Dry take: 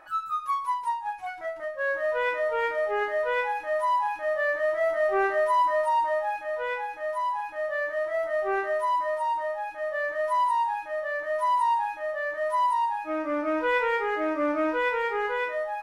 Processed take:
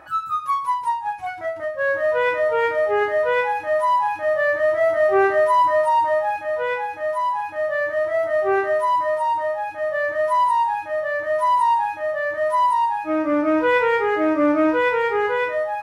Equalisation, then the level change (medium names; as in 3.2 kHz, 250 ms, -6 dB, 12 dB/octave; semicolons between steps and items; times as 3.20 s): high-pass 63 Hz 24 dB/octave; bass shelf 140 Hz +11.5 dB; bass shelf 380 Hz +5.5 dB; +5.0 dB